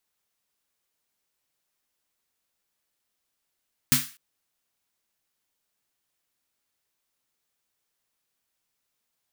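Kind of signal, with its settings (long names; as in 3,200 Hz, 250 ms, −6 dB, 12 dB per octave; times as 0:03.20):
synth snare length 0.25 s, tones 140 Hz, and 250 Hz, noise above 1,300 Hz, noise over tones 4 dB, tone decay 0.22 s, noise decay 0.36 s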